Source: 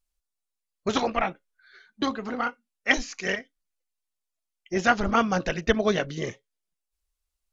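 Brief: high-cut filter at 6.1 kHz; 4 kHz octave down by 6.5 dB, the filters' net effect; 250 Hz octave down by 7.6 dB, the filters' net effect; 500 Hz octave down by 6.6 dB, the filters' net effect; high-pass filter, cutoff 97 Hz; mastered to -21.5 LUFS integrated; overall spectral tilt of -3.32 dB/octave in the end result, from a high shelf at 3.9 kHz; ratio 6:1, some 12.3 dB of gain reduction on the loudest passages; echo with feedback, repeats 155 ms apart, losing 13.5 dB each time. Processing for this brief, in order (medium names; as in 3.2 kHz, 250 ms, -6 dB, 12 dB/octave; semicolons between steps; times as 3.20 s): high-pass 97 Hz; low-pass 6.1 kHz; peaking EQ 250 Hz -8 dB; peaking EQ 500 Hz -6 dB; treble shelf 3.9 kHz -7.5 dB; peaking EQ 4 kHz -4 dB; compression 6:1, threshold -32 dBFS; feedback delay 155 ms, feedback 21%, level -13.5 dB; trim +16.5 dB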